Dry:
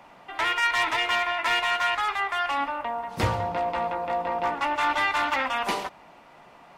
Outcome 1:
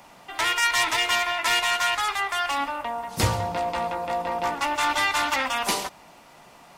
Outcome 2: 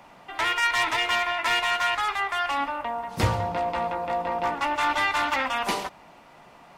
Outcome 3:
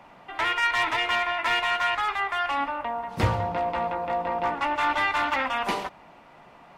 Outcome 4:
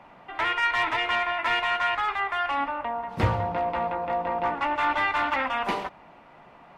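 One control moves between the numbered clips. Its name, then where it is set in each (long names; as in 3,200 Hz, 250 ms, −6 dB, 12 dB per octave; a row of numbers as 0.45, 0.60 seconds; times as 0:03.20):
bass and treble, treble: +14, +4, −4, −12 decibels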